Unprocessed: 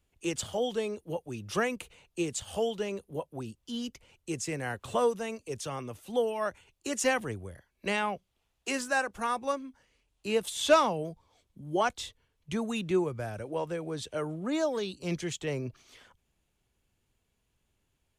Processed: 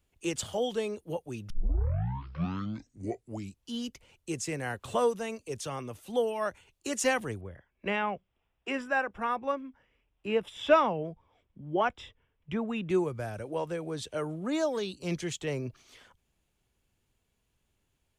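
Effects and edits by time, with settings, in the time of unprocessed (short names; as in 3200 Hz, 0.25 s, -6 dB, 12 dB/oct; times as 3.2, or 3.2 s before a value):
1.5 tape start 2.24 s
7.41–12.9 polynomial smoothing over 25 samples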